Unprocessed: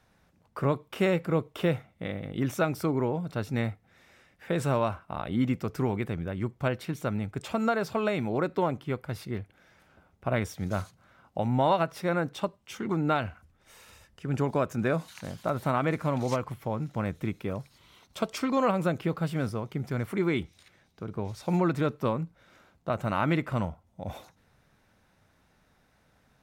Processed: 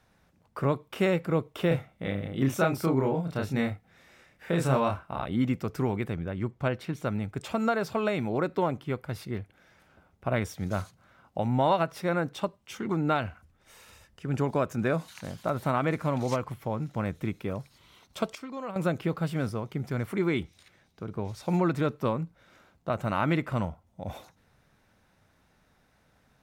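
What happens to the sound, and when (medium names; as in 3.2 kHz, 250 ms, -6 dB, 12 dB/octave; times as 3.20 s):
1.68–5.26 s: doubling 30 ms -3 dB
6.16–7.04 s: treble shelf 6.9 kHz -7.5 dB
18.35–18.76 s: gain -12 dB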